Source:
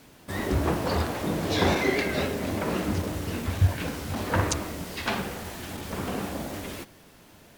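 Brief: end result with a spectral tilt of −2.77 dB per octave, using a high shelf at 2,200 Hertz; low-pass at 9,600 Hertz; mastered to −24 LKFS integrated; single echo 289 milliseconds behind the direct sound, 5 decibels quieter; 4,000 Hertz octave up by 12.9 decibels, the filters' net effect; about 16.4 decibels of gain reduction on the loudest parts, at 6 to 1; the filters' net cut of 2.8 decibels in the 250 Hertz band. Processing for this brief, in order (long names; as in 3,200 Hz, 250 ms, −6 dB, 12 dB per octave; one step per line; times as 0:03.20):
low-pass filter 9,600 Hz
parametric band 250 Hz −4 dB
high-shelf EQ 2,200 Hz +8.5 dB
parametric band 4,000 Hz +8 dB
downward compressor 6 to 1, threshold −34 dBFS
single-tap delay 289 ms −5 dB
level +10.5 dB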